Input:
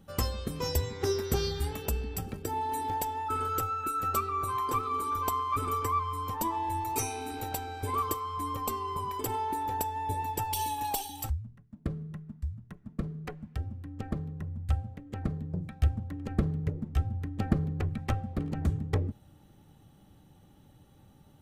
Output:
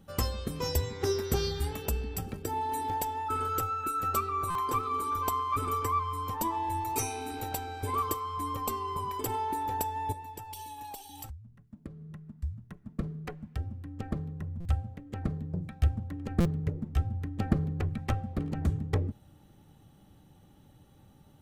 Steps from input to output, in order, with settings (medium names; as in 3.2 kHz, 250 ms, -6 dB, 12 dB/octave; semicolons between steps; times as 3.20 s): 10.12–12.39 s: compression 6:1, threshold -41 dBFS, peak gain reduction 13.5 dB; buffer glitch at 4.50/14.60/16.40 s, samples 256, times 8